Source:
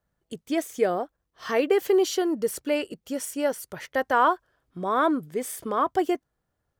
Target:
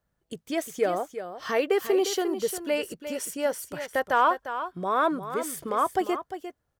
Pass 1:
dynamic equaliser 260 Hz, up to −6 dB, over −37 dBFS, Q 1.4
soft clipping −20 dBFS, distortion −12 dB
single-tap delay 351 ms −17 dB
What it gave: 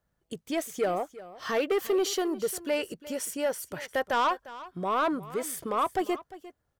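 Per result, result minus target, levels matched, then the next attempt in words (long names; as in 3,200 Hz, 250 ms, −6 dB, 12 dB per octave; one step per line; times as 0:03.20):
soft clipping: distortion +17 dB; echo-to-direct −6.5 dB
dynamic equaliser 260 Hz, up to −6 dB, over −37 dBFS, Q 1.4
soft clipping −8 dBFS, distortion −29 dB
single-tap delay 351 ms −17 dB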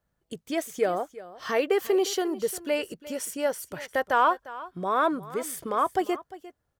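echo-to-direct −6.5 dB
dynamic equaliser 260 Hz, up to −6 dB, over −37 dBFS, Q 1.4
soft clipping −8 dBFS, distortion −29 dB
single-tap delay 351 ms −10.5 dB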